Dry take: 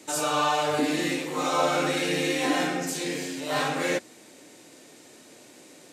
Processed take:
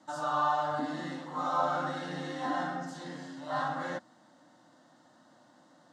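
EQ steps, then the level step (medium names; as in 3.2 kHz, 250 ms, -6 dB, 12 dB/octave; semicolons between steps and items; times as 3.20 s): band-pass 140–2700 Hz; static phaser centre 1 kHz, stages 4; -2.0 dB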